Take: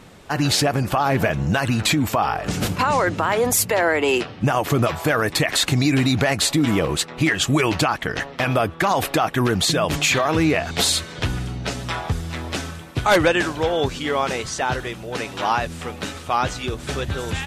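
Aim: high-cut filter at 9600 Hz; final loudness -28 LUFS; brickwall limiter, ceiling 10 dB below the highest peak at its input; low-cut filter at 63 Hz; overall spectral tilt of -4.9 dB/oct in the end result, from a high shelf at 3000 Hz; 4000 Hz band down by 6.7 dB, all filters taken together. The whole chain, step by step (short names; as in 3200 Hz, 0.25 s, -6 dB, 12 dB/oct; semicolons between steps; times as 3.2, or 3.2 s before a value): HPF 63 Hz; LPF 9600 Hz; high shelf 3000 Hz -5.5 dB; bell 4000 Hz -4 dB; gain -0.5 dB; limiter -18 dBFS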